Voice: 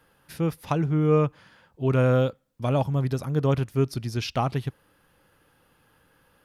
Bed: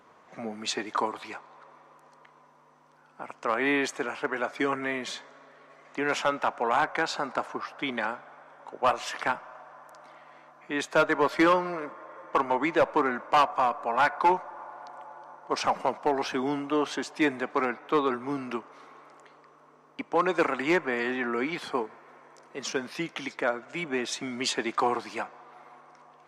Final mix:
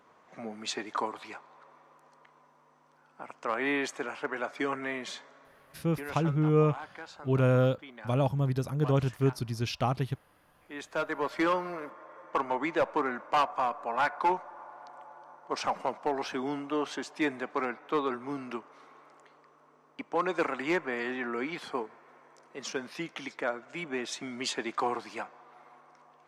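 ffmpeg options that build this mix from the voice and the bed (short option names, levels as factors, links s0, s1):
-filter_complex "[0:a]adelay=5450,volume=0.668[s0];[1:a]volume=2.66,afade=t=out:st=5.3:d=1:silence=0.223872,afade=t=in:st=10.39:d=1.34:silence=0.237137[s1];[s0][s1]amix=inputs=2:normalize=0"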